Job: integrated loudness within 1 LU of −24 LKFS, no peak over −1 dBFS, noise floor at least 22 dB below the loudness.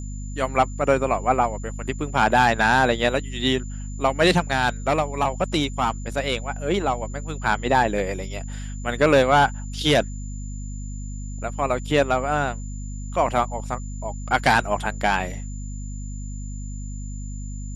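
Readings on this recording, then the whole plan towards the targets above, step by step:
mains hum 50 Hz; hum harmonics up to 250 Hz; level of the hum −29 dBFS; interfering tone 7,100 Hz; level of the tone −44 dBFS; integrated loudness −22.5 LKFS; sample peak −4.0 dBFS; target loudness −24.0 LKFS
→ hum removal 50 Hz, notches 5
notch filter 7,100 Hz, Q 30
level −1.5 dB

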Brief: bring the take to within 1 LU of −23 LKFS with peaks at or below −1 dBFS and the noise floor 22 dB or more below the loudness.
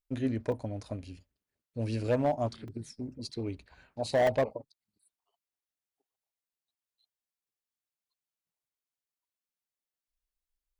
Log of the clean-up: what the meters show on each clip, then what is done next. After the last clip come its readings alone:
share of clipped samples 0.5%; peaks flattened at −21.0 dBFS; number of dropouts 3; longest dropout 3.0 ms; integrated loudness −32.5 LKFS; sample peak −21.0 dBFS; target loudness −23.0 LKFS
→ clipped peaks rebuilt −21 dBFS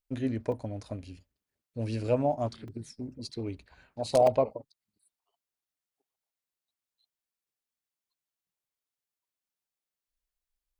share of clipped samples 0.0%; number of dropouts 3; longest dropout 3.0 ms
→ repair the gap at 0:00.52/0:02.68/0:04.27, 3 ms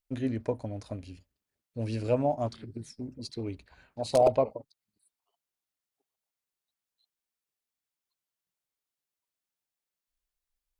number of dropouts 0; integrated loudness −30.5 LKFS; sample peak −12.0 dBFS; target loudness −23.0 LKFS
→ level +7.5 dB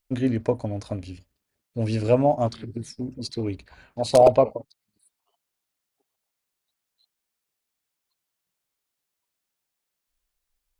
integrated loudness −23.0 LKFS; sample peak −4.5 dBFS; background noise floor −83 dBFS

